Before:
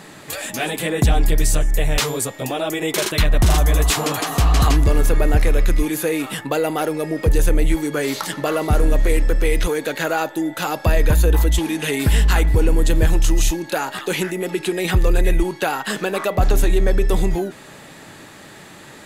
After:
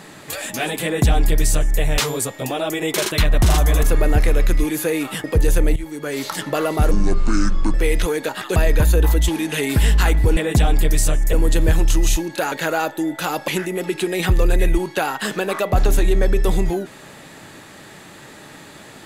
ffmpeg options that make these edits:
-filter_complex "[0:a]asplit=12[a][b][c][d][e][f][g][h][i][j][k][l];[a]atrim=end=3.832[m];[b]atrim=start=5.018:end=6.432[n];[c]atrim=start=7.148:end=7.67,asetpts=PTS-STARTPTS,afade=t=out:st=0.518:d=0.004:c=hsin:silence=0.188365[o];[d]atrim=start=7.67:end=8.824,asetpts=PTS-STARTPTS,afade=t=in:d=0.64:silence=0.188365[p];[e]atrim=start=8.82:end=9.35,asetpts=PTS-STARTPTS,asetrate=28224,aresample=44100,atrim=end_sample=36520,asetpts=PTS-STARTPTS[q];[f]atrim=start=9.346:end=9.902[r];[g]atrim=start=13.858:end=14.132[s];[h]atrim=start=10.858:end=12.672[t];[i]atrim=start=0.838:end=1.802[u];[j]atrim=start=12.668:end=13.862[v];[k]atrim=start=9.898:end=10.862[w];[l]atrim=start=14.128[x];[m][n]acrossfade=d=0.004:c1=hsin:c2=hsin[y];[o][p]concat=n=2:v=0:a=1[z];[y][z]acrossfade=d=0.004:c1=hsin:c2=hsin[aa];[aa][q]acrossfade=d=0.004:c1=hsin:c2=hsin[ab];[ab][r]acrossfade=d=0.004:c1=hsin:c2=hsin[ac];[ac][s]acrossfade=d=0.004:c1=hsin:c2=hsin[ad];[ad][t]acrossfade=d=0.004:c1=hsin:c2=hsin[ae];[ae][u]acrossfade=d=0.004:c1=hsin:c2=hsin[af];[af][v]acrossfade=d=0.004:c1=hsin:c2=hsin[ag];[ag][w]acrossfade=d=0.004:c1=hsin:c2=hsin[ah];[ah][x]acrossfade=d=0.004:c1=hsin:c2=hsin"

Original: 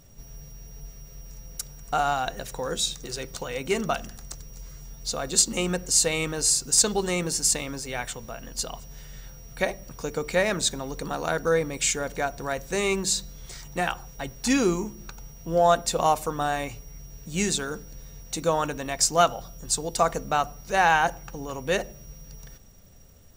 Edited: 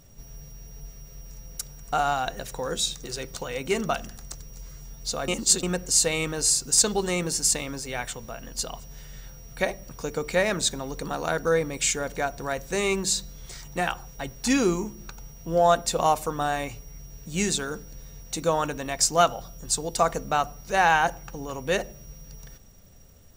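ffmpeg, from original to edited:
-filter_complex "[0:a]asplit=3[a][b][c];[a]atrim=end=5.282[d];[b]atrim=start=5.278:end=5.632,asetpts=PTS-STARTPTS,areverse[e];[c]atrim=start=5.628[f];[d][e]acrossfade=d=0.004:c1=hsin:c2=hsin[g];[g][f]acrossfade=d=0.004:c1=hsin:c2=hsin"

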